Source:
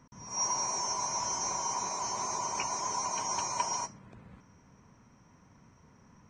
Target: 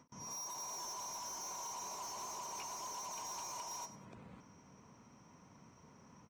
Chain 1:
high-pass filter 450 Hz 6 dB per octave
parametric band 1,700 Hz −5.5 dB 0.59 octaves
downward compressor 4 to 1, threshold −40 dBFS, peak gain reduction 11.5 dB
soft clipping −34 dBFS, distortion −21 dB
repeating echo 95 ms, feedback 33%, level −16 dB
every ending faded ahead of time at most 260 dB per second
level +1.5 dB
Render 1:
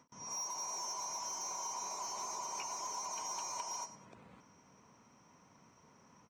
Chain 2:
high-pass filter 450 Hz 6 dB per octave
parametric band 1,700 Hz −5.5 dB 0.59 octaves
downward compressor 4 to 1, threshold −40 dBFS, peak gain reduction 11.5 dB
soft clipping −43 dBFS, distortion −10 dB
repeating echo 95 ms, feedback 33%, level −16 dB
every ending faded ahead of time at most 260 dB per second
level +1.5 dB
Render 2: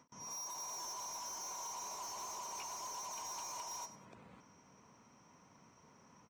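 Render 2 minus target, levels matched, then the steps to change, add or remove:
250 Hz band −4.0 dB
change: high-pass filter 190 Hz 6 dB per octave

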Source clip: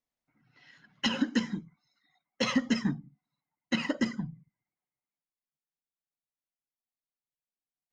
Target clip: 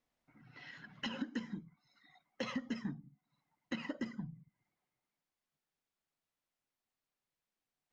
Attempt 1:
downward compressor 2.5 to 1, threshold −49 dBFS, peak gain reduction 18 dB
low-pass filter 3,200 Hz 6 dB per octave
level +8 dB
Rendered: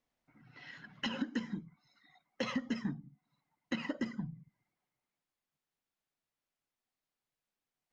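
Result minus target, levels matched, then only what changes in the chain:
downward compressor: peak gain reduction −3.5 dB
change: downward compressor 2.5 to 1, threshold −55 dBFS, peak gain reduction 21.5 dB

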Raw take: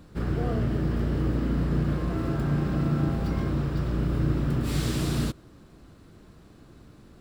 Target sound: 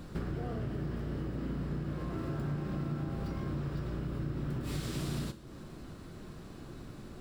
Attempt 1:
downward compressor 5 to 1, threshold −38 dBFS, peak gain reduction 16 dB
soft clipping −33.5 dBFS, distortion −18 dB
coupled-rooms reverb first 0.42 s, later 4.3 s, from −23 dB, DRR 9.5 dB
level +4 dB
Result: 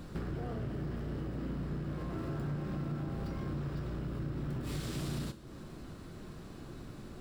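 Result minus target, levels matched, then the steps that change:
soft clipping: distortion +15 dB
change: soft clipping −24.5 dBFS, distortion −33 dB

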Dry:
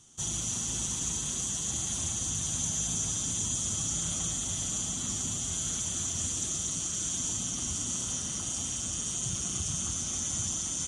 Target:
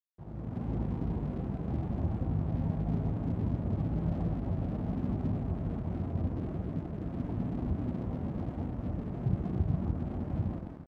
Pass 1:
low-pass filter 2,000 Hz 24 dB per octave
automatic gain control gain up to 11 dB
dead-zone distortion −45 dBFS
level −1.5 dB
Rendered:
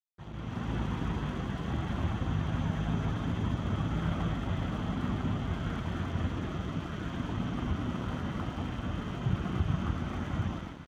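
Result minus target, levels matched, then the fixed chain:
2,000 Hz band +14.5 dB
low-pass filter 750 Hz 24 dB per octave
automatic gain control gain up to 11 dB
dead-zone distortion −45 dBFS
level −1.5 dB

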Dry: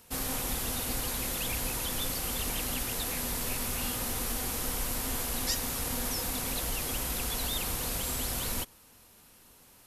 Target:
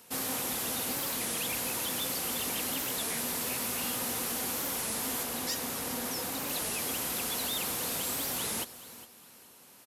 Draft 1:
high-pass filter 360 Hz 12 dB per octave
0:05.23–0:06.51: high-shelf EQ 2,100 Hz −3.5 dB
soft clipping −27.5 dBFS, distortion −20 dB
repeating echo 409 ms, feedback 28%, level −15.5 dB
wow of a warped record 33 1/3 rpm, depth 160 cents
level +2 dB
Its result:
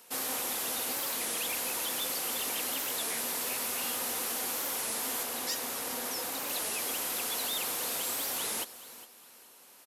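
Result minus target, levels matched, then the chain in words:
125 Hz band −11.0 dB
high-pass filter 170 Hz 12 dB per octave
0:05.23–0:06.51: high-shelf EQ 2,100 Hz −3.5 dB
soft clipping −27.5 dBFS, distortion −19 dB
repeating echo 409 ms, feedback 28%, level −15.5 dB
wow of a warped record 33 1/3 rpm, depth 160 cents
level +2 dB

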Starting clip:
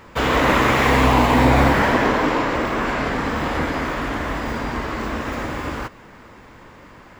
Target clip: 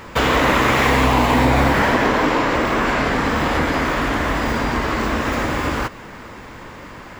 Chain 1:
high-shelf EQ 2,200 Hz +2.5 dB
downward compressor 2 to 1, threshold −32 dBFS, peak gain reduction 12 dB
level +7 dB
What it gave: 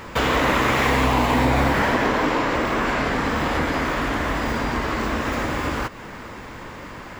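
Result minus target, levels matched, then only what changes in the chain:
downward compressor: peak gain reduction +3.5 dB
change: downward compressor 2 to 1, threshold −25 dBFS, peak gain reduction 8.5 dB

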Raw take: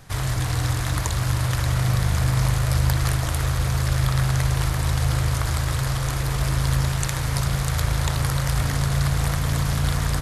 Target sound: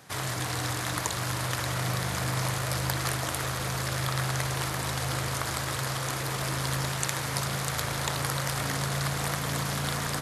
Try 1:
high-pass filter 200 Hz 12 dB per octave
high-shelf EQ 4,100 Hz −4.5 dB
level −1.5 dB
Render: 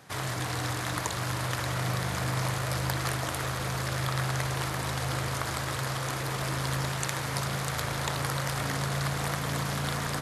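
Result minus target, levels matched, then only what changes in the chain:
8,000 Hz band −2.5 dB
remove: high-shelf EQ 4,100 Hz −4.5 dB

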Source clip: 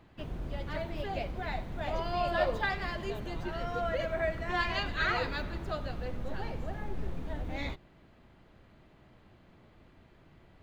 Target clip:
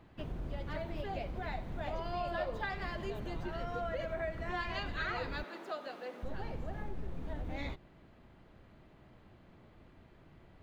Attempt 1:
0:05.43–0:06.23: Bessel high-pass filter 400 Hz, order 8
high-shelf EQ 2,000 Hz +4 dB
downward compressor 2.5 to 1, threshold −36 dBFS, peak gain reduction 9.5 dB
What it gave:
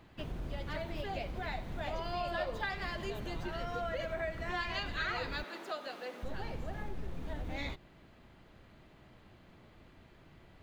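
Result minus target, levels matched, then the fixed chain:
4,000 Hz band +4.0 dB
0:05.43–0:06.23: Bessel high-pass filter 400 Hz, order 8
high-shelf EQ 2,000 Hz −3.5 dB
downward compressor 2.5 to 1, threshold −36 dBFS, peak gain reduction 9 dB

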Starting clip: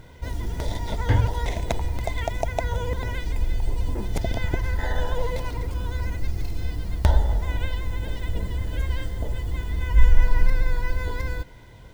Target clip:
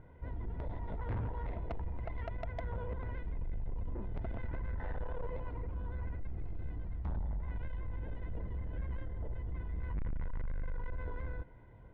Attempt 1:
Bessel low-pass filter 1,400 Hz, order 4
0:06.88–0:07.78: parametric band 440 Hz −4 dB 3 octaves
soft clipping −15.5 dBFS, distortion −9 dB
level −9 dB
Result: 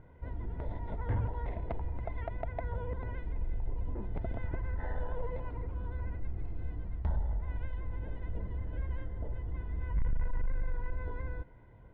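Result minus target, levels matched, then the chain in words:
soft clipping: distortion −4 dB
Bessel low-pass filter 1,400 Hz, order 4
0:06.88–0:07.78: parametric band 440 Hz −4 dB 3 octaves
soft clipping −23.5 dBFS, distortion −4 dB
level −9 dB

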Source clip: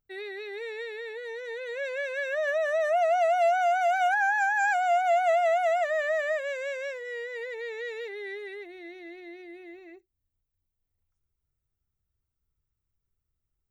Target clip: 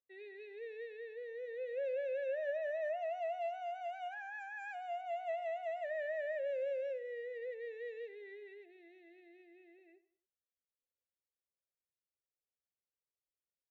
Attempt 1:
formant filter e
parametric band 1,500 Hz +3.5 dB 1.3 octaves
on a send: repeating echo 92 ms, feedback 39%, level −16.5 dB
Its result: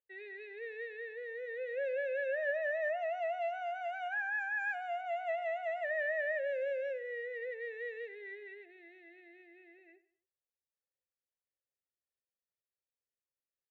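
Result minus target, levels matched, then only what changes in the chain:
2,000 Hz band +6.5 dB
change: parametric band 1,500 Hz −8.5 dB 1.3 octaves

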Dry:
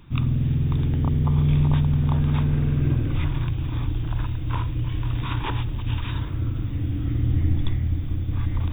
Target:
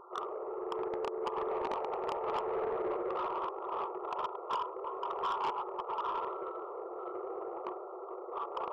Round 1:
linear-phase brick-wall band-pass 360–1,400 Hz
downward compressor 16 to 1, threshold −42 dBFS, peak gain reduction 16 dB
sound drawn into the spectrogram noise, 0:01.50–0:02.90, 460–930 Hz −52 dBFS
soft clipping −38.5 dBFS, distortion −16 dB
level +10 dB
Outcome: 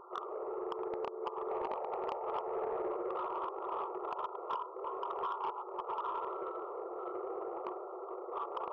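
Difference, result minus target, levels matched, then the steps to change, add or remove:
downward compressor: peak gain reduction +6.5 dB
change: downward compressor 16 to 1, threshold −35 dBFS, peak gain reduction 9.5 dB

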